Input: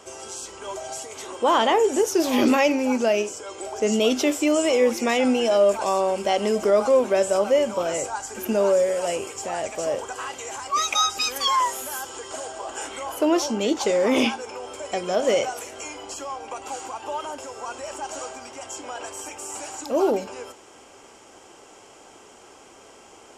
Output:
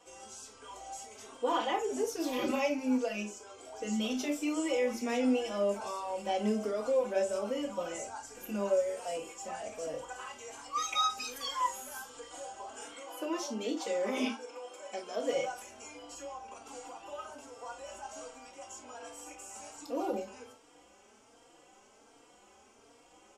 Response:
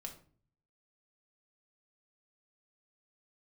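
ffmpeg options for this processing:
-filter_complex "[0:a]asettb=1/sr,asplit=3[link_01][link_02][link_03];[link_01]atrim=end=12.884[link_04];[link_02]atrim=start=12.88:end=15.33,asetpts=PTS-STARTPTS,afade=type=in:duration=0.004:curve=qsin,afade=type=out:start_time=2.446:duration=0.004:curve=qsin,highpass=250[link_05];[link_03]atrim=start=15.326[link_06];[link_04][link_05]acrossfade=duration=0.004:curve1=hsin:curve2=qsin[link_07];[link_07][link_06]acrossfade=duration=0.004:curve1=qsin:curve2=hsin[link_08];[1:a]atrim=start_sample=2205,atrim=end_sample=3528,asetrate=48510,aresample=44100[link_09];[link_08][link_09]afir=irnorm=-1:irlink=0,asplit=2[link_10][link_11];[link_11]adelay=3.7,afreqshift=1.3[link_12];[link_10][link_12]amix=inputs=2:normalize=1,volume=-4.5dB"

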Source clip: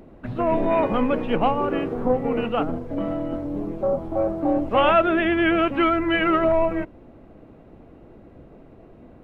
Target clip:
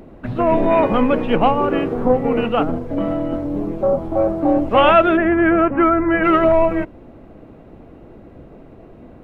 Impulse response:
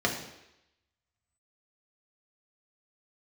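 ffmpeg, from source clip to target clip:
-filter_complex "[0:a]asplit=3[link_01][link_02][link_03];[link_01]afade=type=out:start_time=5.16:duration=0.02[link_04];[link_02]lowpass=frequency=1800:width=0.5412,lowpass=frequency=1800:width=1.3066,afade=type=in:start_time=5.16:duration=0.02,afade=type=out:start_time=6.23:duration=0.02[link_05];[link_03]afade=type=in:start_time=6.23:duration=0.02[link_06];[link_04][link_05][link_06]amix=inputs=3:normalize=0,volume=5.5dB"

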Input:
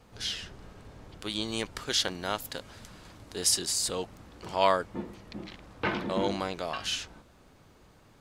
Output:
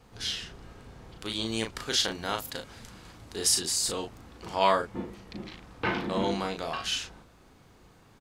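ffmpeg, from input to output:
ffmpeg -i in.wav -filter_complex "[0:a]bandreject=frequency=600:width=12,asplit=2[link_01][link_02];[link_02]adelay=36,volume=-5dB[link_03];[link_01][link_03]amix=inputs=2:normalize=0" out.wav

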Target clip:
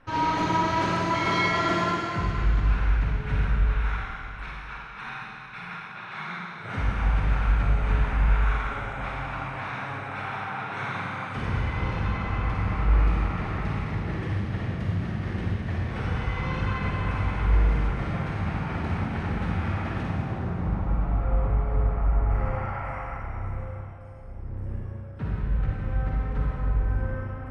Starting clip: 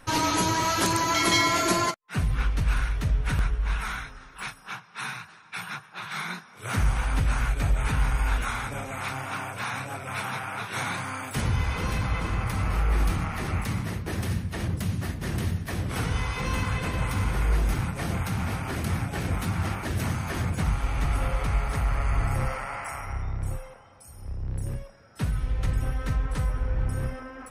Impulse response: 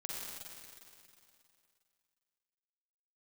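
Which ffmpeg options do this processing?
-filter_complex "[0:a]asetnsamples=nb_out_samples=441:pad=0,asendcmd='20.03 lowpass f 1000;22.3 lowpass f 1800',lowpass=2600[link_01];[1:a]atrim=start_sample=2205[link_02];[link_01][link_02]afir=irnorm=-1:irlink=0"

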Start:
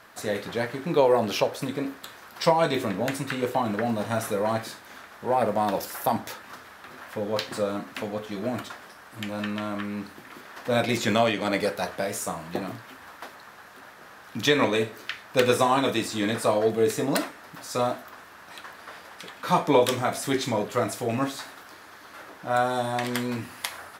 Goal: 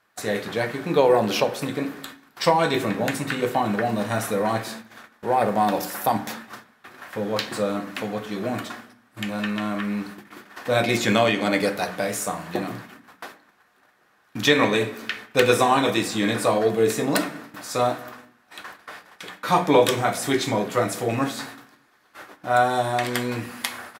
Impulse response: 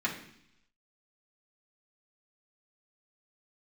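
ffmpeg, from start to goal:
-filter_complex "[0:a]asplit=2[link_01][link_02];[link_02]adelay=200,lowpass=frequency=1100:poles=1,volume=-20dB,asplit=2[link_03][link_04];[link_04]adelay=200,lowpass=frequency=1100:poles=1,volume=0.47,asplit=2[link_05][link_06];[link_06]adelay=200,lowpass=frequency=1100:poles=1,volume=0.47,asplit=2[link_07][link_08];[link_08]adelay=200,lowpass=frequency=1100:poles=1,volume=0.47[link_09];[link_01][link_03][link_05][link_07][link_09]amix=inputs=5:normalize=0,agate=range=-18dB:threshold=-43dB:ratio=16:detection=peak,asplit=2[link_10][link_11];[1:a]atrim=start_sample=2205[link_12];[link_11][link_12]afir=irnorm=-1:irlink=0,volume=-14dB[link_13];[link_10][link_13]amix=inputs=2:normalize=0,volume=2dB"

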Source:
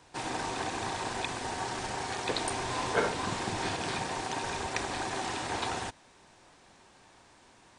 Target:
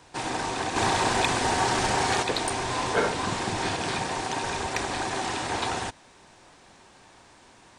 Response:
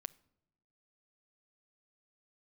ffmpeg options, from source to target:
-filter_complex "[0:a]asettb=1/sr,asplit=3[link_01][link_02][link_03];[link_01]atrim=end=0.764[link_04];[link_02]atrim=start=0.76:end=2.23,asetpts=PTS-STARTPTS,afade=type=in:duration=0.004:curve=qsin,afade=type=out:start_time=1.466:duration=0.004:curve=qsin,acontrast=68[link_05];[link_03]atrim=start=2.226[link_06];[link_04][link_05]acrossfade=duration=0.004:curve1=hsin:curve2=qsin[link_07];[link_07][link_06]acrossfade=duration=0.004:curve1=qsin:curve2=hsin,asoftclip=type=tanh:threshold=-18dB,volume=5dB"

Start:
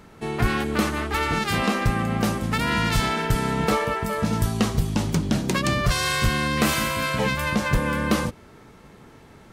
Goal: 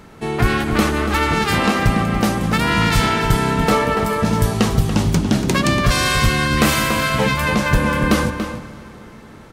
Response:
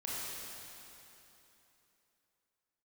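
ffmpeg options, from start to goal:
-filter_complex "[0:a]asplit=2[link_01][link_02];[link_02]adelay=285.7,volume=-8dB,highshelf=frequency=4000:gain=-6.43[link_03];[link_01][link_03]amix=inputs=2:normalize=0,asplit=2[link_04][link_05];[1:a]atrim=start_sample=2205,highshelf=frequency=10000:gain=-9[link_06];[link_05][link_06]afir=irnorm=-1:irlink=0,volume=-14dB[link_07];[link_04][link_07]amix=inputs=2:normalize=0,volume=4.5dB"

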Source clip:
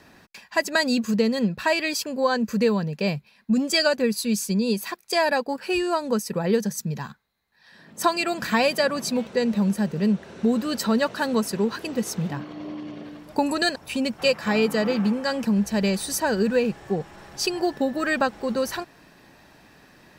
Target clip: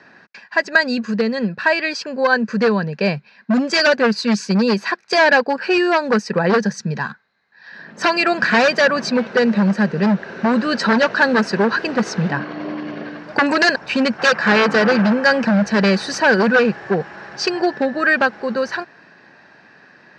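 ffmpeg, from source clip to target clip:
ffmpeg -i in.wav -af "dynaudnorm=framelen=210:gausssize=31:maxgain=11dB,aeval=exprs='0.251*(abs(mod(val(0)/0.251+3,4)-2)-1)':channel_layout=same,highpass=170,equalizer=frequency=290:width_type=q:width=4:gain=-4,equalizer=frequency=1600:width_type=q:width=4:gain=9,equalizer=frequency=3400:width_type=q:width=4:gain=-7,lowpass=frequency=5000:width=0.5412,lowpass=frequency=5000:width=1.3066,volume=3.5dB" out.wav

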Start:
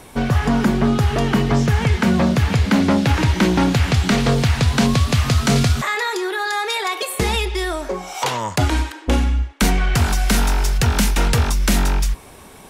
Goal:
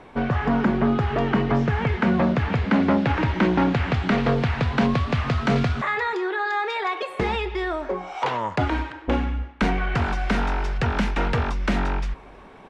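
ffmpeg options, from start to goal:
ffmpeg -i in.wav -filter_complex "[0:a]lowpass=2200,equalizer=frequency=64:width_type=o:width=2.8:gain=-7,asplit=2[link_01][link_02];[link_02]adelay=320.7,volume=-27dB,highshelf=frequency=4000:gain=-7.22[link_03];[link_01][link_03]amix=inputs=2:normalize=0,volume=-1.5dB" out.wav

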